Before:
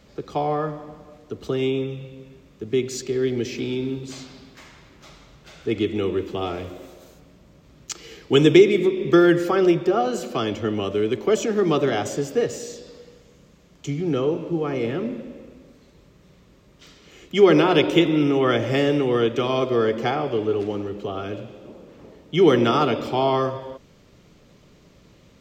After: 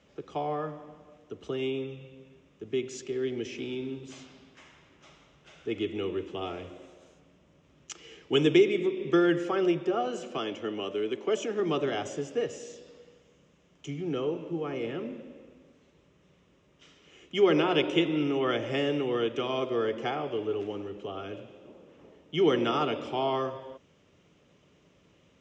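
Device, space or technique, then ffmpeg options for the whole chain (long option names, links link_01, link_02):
car door speaker: -filter_complex "[0:a]highpass=81,equalizer=frequency=120:width_type=q:width=4:gain=-5,equalizer=frequency=210:width_type=q:width=4:gain=-4,equalizer=frequency=2900:width_type=q:width=4:gain=5,equalizer=frequency=4400:width_type=q:width=4:gain=-10,lowpass=frequency=7400:width=0.5412,lowpass=frequency=7400:width=1.3066,asettb=1/sr,asplit=3[link_01][link_02][link_03];[link_01]atrim=end=10.384[link_04];[link_02]atrim=start=10.38:end=11.6,asetpts=PTS-STARTPTS,afade=type=in:duration=0.004:curve=qsin,afade=type=out:start_time=1.216:duration=0.004:curve=qsin,highpass=170[link_05];[link_03]atrim=start=11.596[link_06];[link_04][link_05]acrossfade=duration=0.004:curve1=hsin:curve2=qsin[link_07];[link_07][link_06]acrossfade=duration=0.004:curve1=qsin:curve2=hsin,volume=-8dB"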